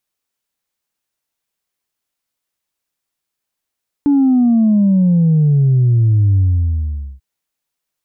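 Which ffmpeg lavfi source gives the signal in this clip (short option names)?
-f lavfi -i "aevalsrc='0.355*clip((3.14-t)/0.83,0,1)*tanh(1*sin(2*PI*290*3.14/log(65/290)*(exp(log(65/290)*t/3.14)-1)))/tanh(1)':d=3.14:s=44100"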